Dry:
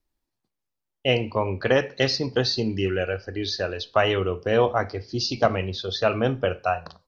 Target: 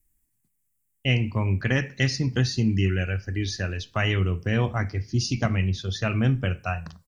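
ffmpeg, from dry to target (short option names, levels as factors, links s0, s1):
-filter_complex "[0:a]firequalizer=gain_entry='entry(160,0);entry(470,-19);entry(1300,-13);entry(2000,-4);entry(4200,-17);entry(7800,8)':delay=0.05:min_phase=1,asplit=2[s0][s1];[s1]alimiter=limit=0.0794:level=0:latency=1:release=340,volume=0.75[s2];[s0][s2]amix=inputs=2:normalize=0,volume=1.5"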